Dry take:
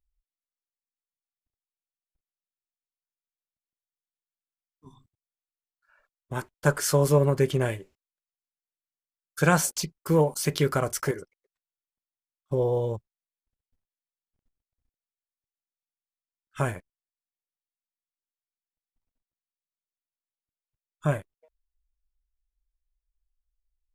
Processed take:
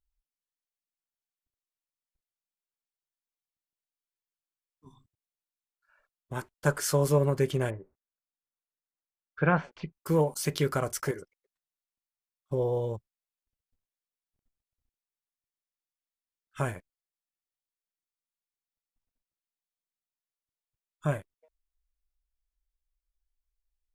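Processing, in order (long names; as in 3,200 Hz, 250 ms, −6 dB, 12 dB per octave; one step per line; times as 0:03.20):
0:07.69–0:09.94: low-pass filter 1,300 Hz → 2,800 Hz 24 dB per octave
level −3.5 dB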